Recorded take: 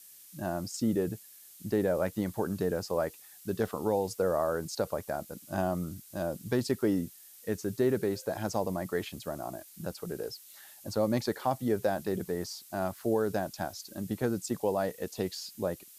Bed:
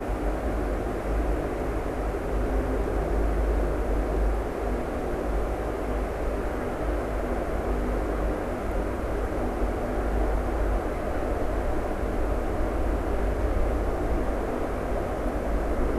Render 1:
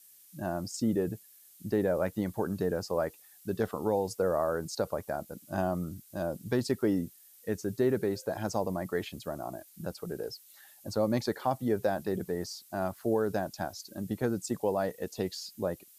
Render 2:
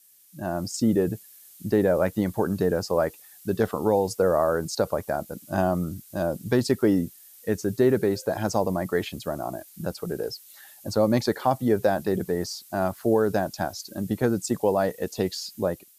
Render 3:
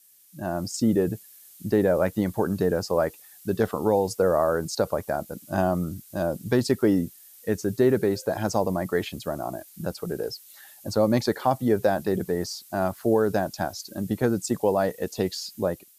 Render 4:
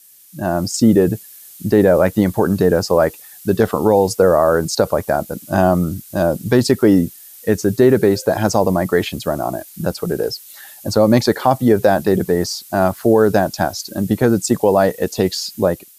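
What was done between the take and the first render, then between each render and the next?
broadband denoise 6 dB, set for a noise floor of −53 dBFS
automatic gain control gain up to 7 dB
no processing that can be heard
level +10 dB; brickwall limiter −2 dBFS, peak gain reduction 2 dB

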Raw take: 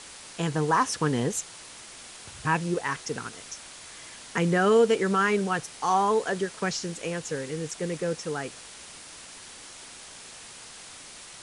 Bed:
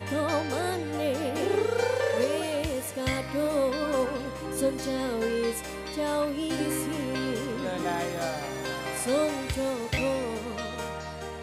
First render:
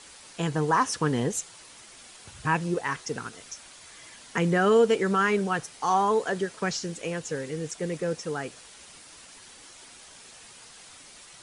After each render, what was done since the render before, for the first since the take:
broadband denoise 6 dB, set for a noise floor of −46 dBFS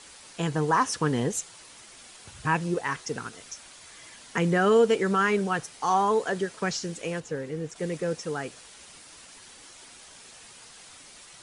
0:07.20–0:07.76: high-shelf EQ 2,700 Hz −10 dB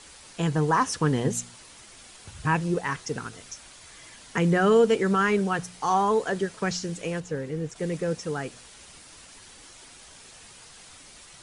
low-shelf EQ 140 Hz +9 dB
hum removal 59.62 Hz, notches 4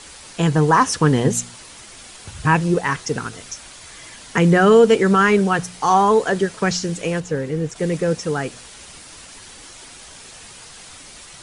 level +8 dB
brickwall limiter −3 dBFS, peak gain reduction 1 dB

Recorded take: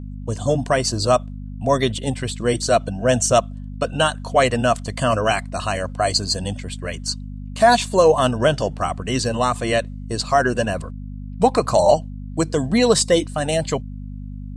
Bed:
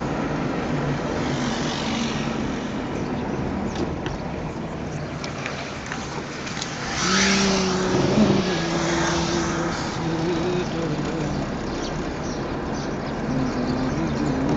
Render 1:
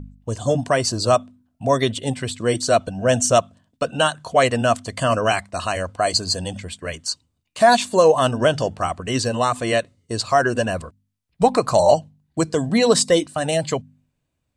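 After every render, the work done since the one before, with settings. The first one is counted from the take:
hum removal 50 Hz, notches 5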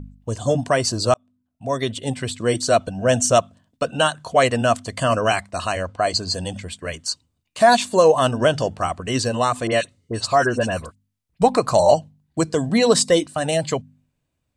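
0:01.14–0:02.23: fade in
0:05.75–0:06.34: high-frequency loss of the air 55 metres
0:09.67–0:11.42: all-pass dispersion highs, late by 49 ms, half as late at 2,100 Hz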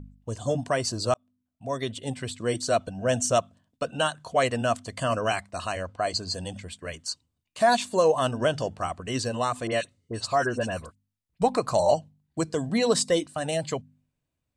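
level −7 dB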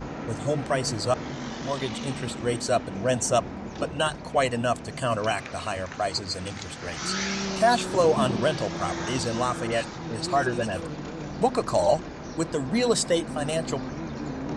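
mix in bed −10 dB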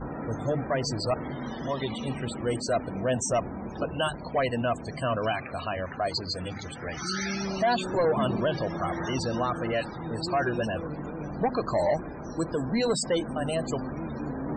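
soft clipping −19 dBFS, distortion −13 dB
spectral peaks only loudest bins 64

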